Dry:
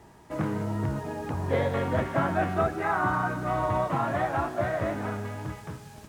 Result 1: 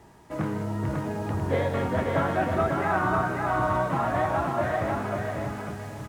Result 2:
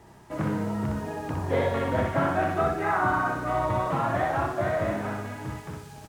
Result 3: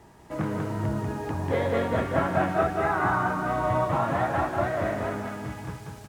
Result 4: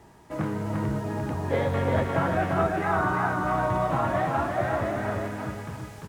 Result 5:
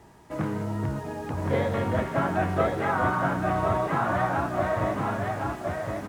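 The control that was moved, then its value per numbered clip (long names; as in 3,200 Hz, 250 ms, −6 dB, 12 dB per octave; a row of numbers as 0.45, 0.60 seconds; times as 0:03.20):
repeating echo, delay time: 545, 62, 191, 346, 1,066 milliseconds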